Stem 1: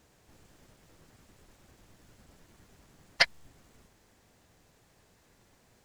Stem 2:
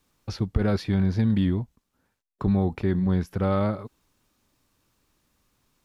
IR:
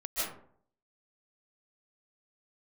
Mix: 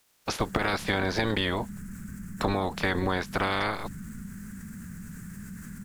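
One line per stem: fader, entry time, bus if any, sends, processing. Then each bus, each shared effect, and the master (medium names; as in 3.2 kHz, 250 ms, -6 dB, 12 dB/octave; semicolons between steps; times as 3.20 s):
-3.5 dB, 0.40 s, no send, FFT filter 130 Hz 0 dB, 200 Hz +15 dB, 300 Hz -10 dB, 730 Hz -29 dB, 1.5 kHz 0 dB, 3.6 kHz -23 dB, 8.1 kHz -2 dB; level flattener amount 70%
+2.5 dB, 0.00 s, no send, spectral peaks clipped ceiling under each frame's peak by 28 dB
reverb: none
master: compression 6:1, threshold -23 dBFS, peak gain reduction 8 dB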